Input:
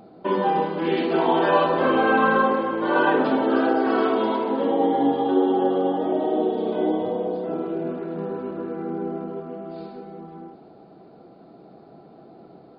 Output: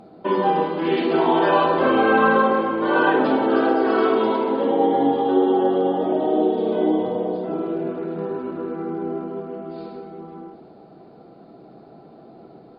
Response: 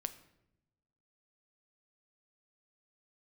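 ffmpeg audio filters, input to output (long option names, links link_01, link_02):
-filter_complex "[1:a]atrim=start_sample=2205,atrim=end_sample=3969,asetrate=23814,aresample=44100[link_01];[0:a][link_01]afir=irnorm=-1:irlink=0"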